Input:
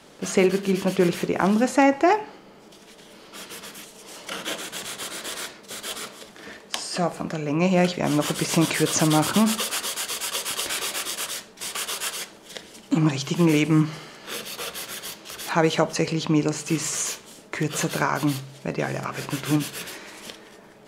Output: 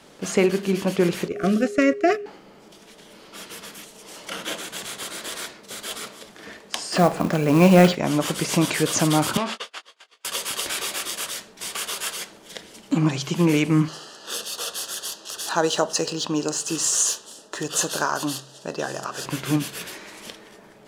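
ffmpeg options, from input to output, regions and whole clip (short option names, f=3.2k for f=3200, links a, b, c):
-filter_complex "[0:a]asettb=1/sr,asplit=3[a][b][c];[a]atrim=end=1.284[d];[b]atrim=start=1.28:end=2.26,asetpts=PTS-STARTPTS,afade=t=in:d=0.004:c=qsin,afade=t=out:st=0.976:d=0.004:c=qsin,agate=range=-11dB:threshold=-22dB:ratio=16:release=100:detection=peak,aeval=exprs='val(0)+0.0316*sin(2*PI*410*n/s)':c=same,asuperstop=centerf=910:order=20:qfactor=2.5[e];[c]atrim=start=2.256[f];[d][e]acrossfade=d=0.004:c1=hsin:c2=qsin[g];[g][f]acrossfade=d=0.004:c1=qsin:c2=hsin,asettb=1/sr,asplit=3[h][i][j];[h]atrim=end=6.924[k];[i]atrim=start=6.92:end=7.95,asetpts=PTS-STARTPTS,afade=t=in:d=0.004:c=qsin,afade=t=out:st=1.026:d=0.004:c=qsin,highshelf=f=4.9k:g=-8.5,acontrast=90,acrusher=bits=5:mode=log:mix=0:aa=0.000001[l];[j]atrim=start=7.946[m];[k][l]acrossfade=d=0.004:c1=hsin:c2=qsin[n];[n][m]acrossfade=d=0.004:c1=qsin:c2=hsin,asettb=1/sr,asplit=3[o][p][q];[o]atrim=end=9.374[r];[p]atrim=start=9.37:end=10.25,asetpts=PTS-STARTPTS,afade=t=in:d=0.004:c=qsin,afade=t=out:st=0.876:d=0.004:c=qsin,agate=range=-34dB:threshold=-26dB:ratio=16:release=100:detection=peak,highpass=400,lowpass=3.9k,asplit=2[s][t];[t]adelay=21,volume=-10dB[u];[s][u]amix=inputs=2:normalize=0,atrim=end_sample=38808[v];[q]atrim=start=10.246[w];[r][v]acrossfade=d=0.004:c1=hsin:c2=qsin[x];[x][w]acrossfade=d=0.004:c1=qsin:c2=hsin,asettb=1/sr,asplit=3[y][z][aa];[y]atrim=end=13.884[ab];[z]atrim=start=13.88:end=19.26,asetpts=PTS-STARTPTS,afade=t=in:d=0.004:c=qsin,afade=t=out:st=5.376:d=0.004:c=qsin,bass=f=250:g=-11,treble=f=4k:g=10,adynamicsmooth=sensitivity=3.5:basefreq=7.8k,asuperstop=centerf=2200:order=4:qfactor=2.9[ac];[aa]atrim=start=19.256[ad];[ab][ac]acrossfade=d=0.004:c1=hsin:c2=qsin[ae];[ae][ad]acrossfade=d=0.004:c1=qsin:c2=hsin"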